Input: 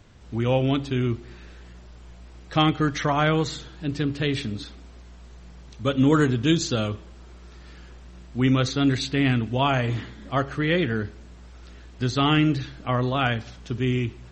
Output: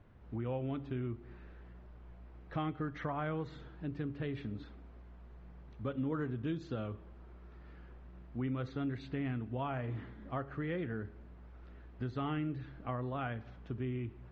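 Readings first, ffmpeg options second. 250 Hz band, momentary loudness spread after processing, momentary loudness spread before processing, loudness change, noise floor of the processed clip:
-15.0 dB, 18 LU, 12 LU, -15.5 dB, -54 dBFS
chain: -af "lowpass=1.7k,acompressor=threshold=-29dB:ratio=2.5,volume=-8dB"

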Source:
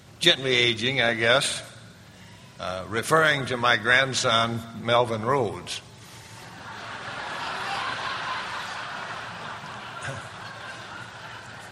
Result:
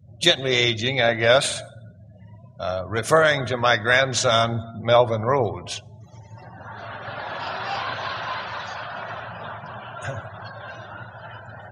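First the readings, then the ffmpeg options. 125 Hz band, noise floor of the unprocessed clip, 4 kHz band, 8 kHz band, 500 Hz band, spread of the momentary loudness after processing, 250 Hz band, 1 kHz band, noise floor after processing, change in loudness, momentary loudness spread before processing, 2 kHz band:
+5.0 dB, -47 dBFS, +0.5 dB, +2.5 dB, +5.0 dB, 20 LU, +1.0 dB, +2.0 dB, -46 dBFS, +2.5 dB, 19 LU, +0.5 dB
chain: -af "equalizer=f=100:t=o:w=0.67:g=8,equalizer=f=630:t=o:w=0.67:g=7,equalizer=f=6.3k:t=o:w=0.67:g=5,afftdn=nr=35:nf=-40"

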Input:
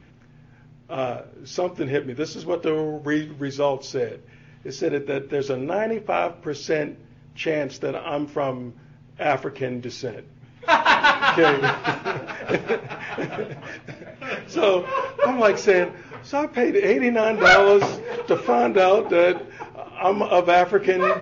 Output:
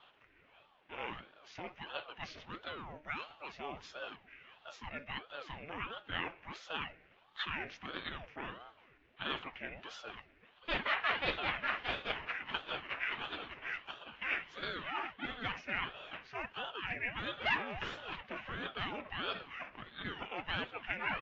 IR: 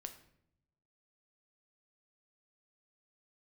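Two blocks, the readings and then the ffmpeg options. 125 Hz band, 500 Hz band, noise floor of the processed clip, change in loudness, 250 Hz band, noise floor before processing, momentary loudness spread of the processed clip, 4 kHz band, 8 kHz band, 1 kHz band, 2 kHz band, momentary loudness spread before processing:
-17.5 dB, -27.5 dB, -66 dBFS, -18.5 dB, -23.0 dB, -50 dBFS, 13 LU, -10.0 dB, n/a, -19.0 dB, -14.0 dB, 15 LU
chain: -filter_complex "[0:a]aemphasis=mode=reproduction:type=bsi,areverse,acompressor=threshold=-24dB:ratio=6,areverse,bandpass=f=2.2k:t=q:w=2.4:csg=0,asplit=2[a][b];[b]adelay=239.1,volume=-28dB,highshelf=f=4k:g=-5.38[c];[a][c]amix=inputs=2:normalize=0,aeval=exprs='val(0)*sin(2*PI*590*n/s+590*0.75/1.5*sin(2*PI*1.5*n/s))':c=same,volume=5dB"

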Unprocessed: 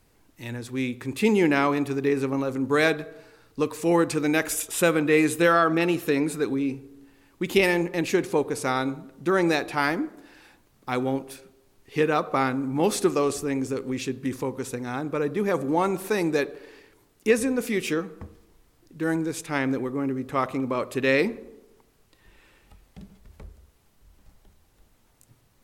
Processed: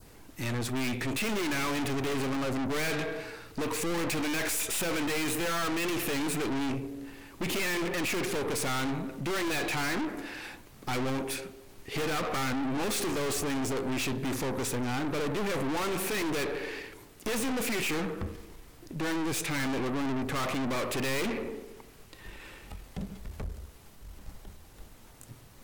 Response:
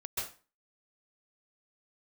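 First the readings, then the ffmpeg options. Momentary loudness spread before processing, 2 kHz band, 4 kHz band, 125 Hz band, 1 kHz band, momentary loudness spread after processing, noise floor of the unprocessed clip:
10 LU, -5.0 dB, +1.0 dB, -3.5 dB, -6.5 dB, 15 LU, -62 dBFS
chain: -af "adynamicequalizer=threshold=0.00794:dfrequency=2300:dqfactor=1.5:tfrequency=2300:tqfactor=1.5:attack=5:release=100:ratio=0.375:range=4:mode=boostabove:tftype=bell,apsyclip=11dB,aeval=exprs='(tanh(31.6*val(0)+0.4)-tanh(0.4))/31.6':c=same"

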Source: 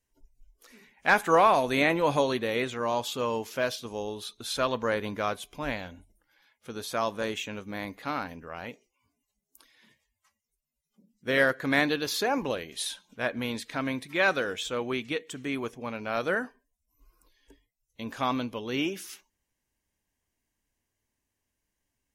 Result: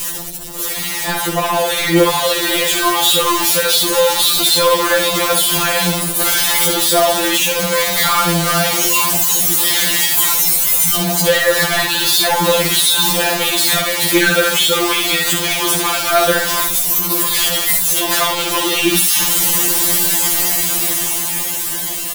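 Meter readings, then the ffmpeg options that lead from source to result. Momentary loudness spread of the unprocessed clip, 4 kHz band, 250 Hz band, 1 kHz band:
14 LU, +23.0 dB, +11.5 dB, +12.0 dB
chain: -filter_complex "[0:a]aeval=exprs='val(0)+0.5*0.0447*sgn(val(0))':c=same,apsyclip=16.5dB,lowshelf=f=170:g=-5.5,aexciter=amount=1.7:drive=7.7:freq=3.1k,acrusher=bits=9:mode=log:mix=0:aa=0.000001,acrossover=split=150|650[a][b][c];[a]acompressor=threshold=-38dB:ratio=4[d];[b]acompressor=threshold=-13dB:ratio=4[e];[c]acompressor=threshold=-12dB:ratio=4[f];[d][e][f]amix=inputs=3:normalize=0,adynamicequalizer=threshold=0.0447:dfrequency=450:dqfactor=0.89:tfrequency=450:tqfactor=0.89:attack=5:release=100:ratio=0.375:range=2:mode=cutabove:tftype=bell,asplit=2[g][h];[h]aecho=0:1:46|66:0.141|0.501[i];[g][i]amix=inputs=2:normalize=0,asoftclip=type=tanh:threshold=-10.5dB,aeval=exprs='val(0)+0.0316*(sin(2*PI*50*n/s)+sin(2*PI*2*50*n/s)/2+sin(2*PI*3*50*n/s)/3+sin(2*PI*4*50*n/s)/4+sin(2*PI*5*50*n/s)/5)':c=same,dynaudnorm=f=260:g=13:m=10.5dB,afftfilt=real='re*2.83*eq(mod(b,8),0)':imag='im*2.83*eq(mod(b,8),0)':win_size=2048:overlap=0.75,volume=-2.5dB"

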